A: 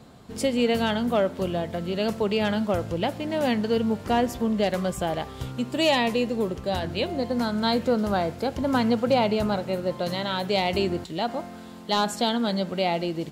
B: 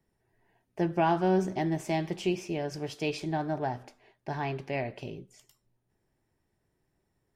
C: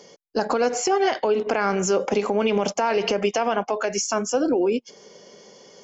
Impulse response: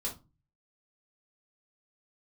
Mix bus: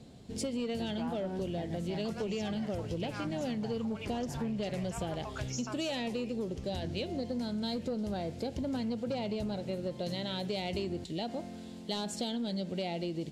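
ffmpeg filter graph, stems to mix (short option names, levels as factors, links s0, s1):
-filter_complex "[0:a]lowpass=9000,equalizer=f=1200:t=o:w=1.2:g=-14.5,volume=0.794[s0];[1:a]asubboost=boost=8.5:cutoff=130,volume=0.335,asplit=2[s1][s2];[2:a]highpass=810,adelay=1550,volume=0.211[s3];[s2]apad=whole_len=325786[s4];[s3][s4]sidechaincompress=threshold=0.00708:ratio=8:attack=16:release=140[s5];[s0][s1][s5]amix=inputs=3:normalize=0,asoftclip=type=tanh:threshold=0.106,acompressor=threshold=0.0251:ratio=6"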